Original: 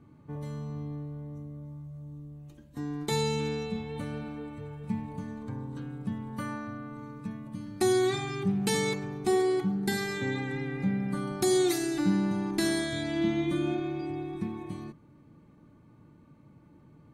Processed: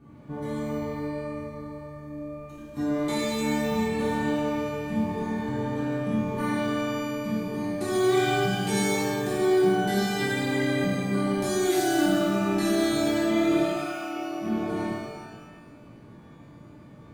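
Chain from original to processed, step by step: limiter -26 dBFS, peak gain reduction 11.5 dB; 13.6–14.43 band-pass 2600 Hz -> 580 Hz, Q 0.86; shimmer reverb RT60 1.3 s, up +12 st, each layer -8 dB, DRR -7.5 dB

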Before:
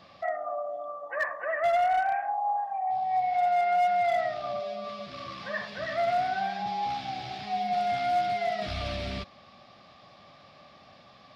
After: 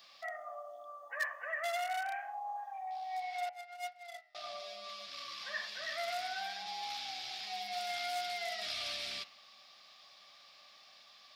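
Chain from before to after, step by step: differentiator; 3.49–4.35 gate -40 dBFS, range -32 dB; de-hum 90.79 Hz, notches 34; gain +7 dB

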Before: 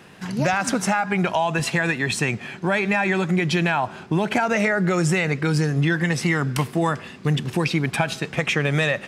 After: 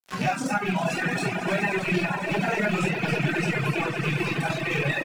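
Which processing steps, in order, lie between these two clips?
rattling part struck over -22 dBFS, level -12 dBFS; shoebox room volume 1200 m³, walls mixed, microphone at 3.5 m; harmonic-percussive split percussive -12 dB; crossover distortion -34.5 dBFS; low shelf 160 Hz -10 dB; tempo 1.8×; flange 0.6 Hz, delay 1 ms, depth 4.7 ms, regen +73%; swelling echo 0.1 s, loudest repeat 5, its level -11 dB; reverb removal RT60 1.5 s; three-band squash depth 70%; gain -3 dB

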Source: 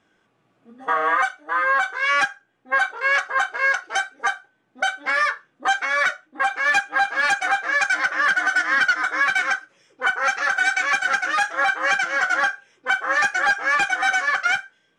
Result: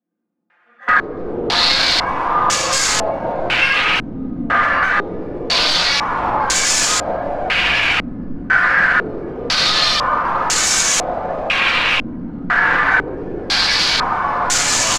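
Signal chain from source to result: echoes that change speed 85 ms, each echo -5 st, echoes 3; differentiator; frequency-shifting echo 89 ms, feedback 35%, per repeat -32 Hz, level -10.5 dB; sample leveller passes 2; in parallel at +2.5 dB: negative-ratio compressor -33 dBFS, ratio -0.5; on the sum: HPF 49 Hz; low shelf 240 Hz -11.5 dB; comb 5.7 ms, depth 81%; wrapped overs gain 17 dB; shoebox room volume 540 m³, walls mixed, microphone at 1.9 m; maximiser +12 dB; stepped low-pass 2 Hz 250–7000 Hz; gain -8.5 dB

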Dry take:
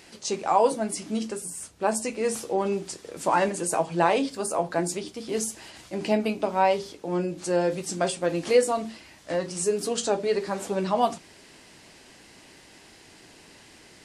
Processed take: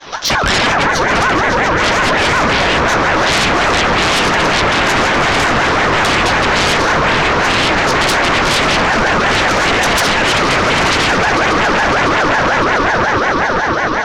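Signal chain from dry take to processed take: Chebyshev low-pass 5100 Hz, order 5; expander -48 dBFS; low shelf 440 Hz +4.5 dB; limiter -15 dBFS, peak gain reduction 8.5 dB; on a send: swelling echo 0.139 s, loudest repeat 8, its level -14 dB; on the sum: sine folder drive 16 dB, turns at -12.5 dBFS; ring modulator with a swept carrier 1000 Hz, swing 30%, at 5.5 Hz; gain +6 dB

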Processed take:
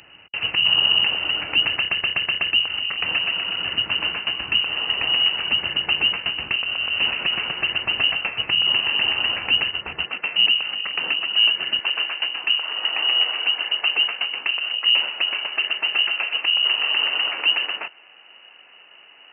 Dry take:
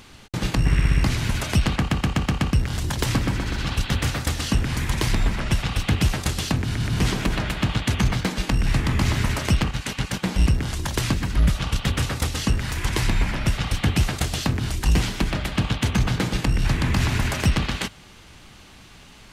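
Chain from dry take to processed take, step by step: inverted band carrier 2900 Hz; HPF 60 Hz 12 dB/oct, from 10.05 s 200 Hz, from 11.79 s 460 Hz; gain -1.5 dB

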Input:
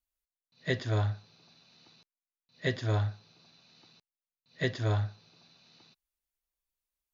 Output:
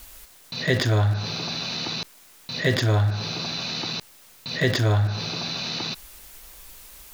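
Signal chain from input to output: in parallel at -8 dB: sample gate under -35 dBFS; on the sum: fast leveller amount 70%; gain +4.5 dB

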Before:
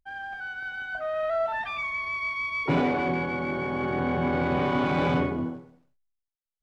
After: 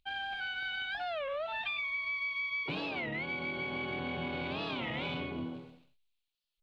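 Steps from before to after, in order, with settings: band shelf 3200 Hz +14.5 dB 1.1 oct; compressor 10:1, threshold -34 dBFS, peak gain reduction 16 dB; record warp 33 1/3 rpm, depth 250 cents

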